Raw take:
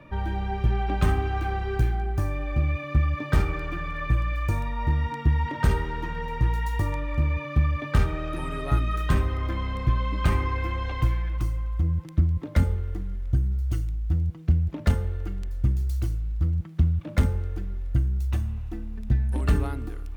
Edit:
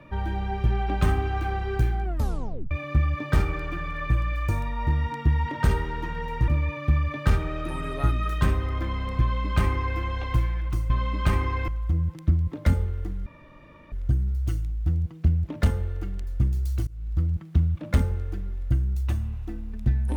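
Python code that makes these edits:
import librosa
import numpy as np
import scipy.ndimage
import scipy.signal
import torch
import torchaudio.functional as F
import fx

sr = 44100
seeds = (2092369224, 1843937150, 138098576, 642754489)

y = fx.edit(x, sr, fx.tape_stop(start_s=2.04, length_s=0.67),
    fx.cut(start_s=6.48, length_s=0.68),
    fx.duplicate(start_s=9.89, length_s=0.78, to_s=11.58),
    fx.insert_room_tone(at_s=13.16, length_s=0.66),
    fx.fade_in_from(start_s=16.11, length_s=0.27, floor_db=-24.0), tone=tone)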